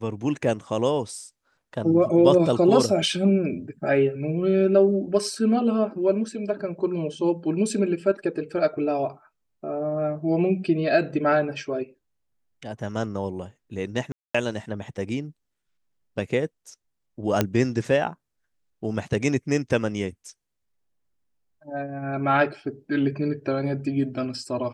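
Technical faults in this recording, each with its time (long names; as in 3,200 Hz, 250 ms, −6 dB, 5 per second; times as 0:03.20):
0:14.12–0:14.35: drop-out 225 ms
0:17.41: click −6 dBFS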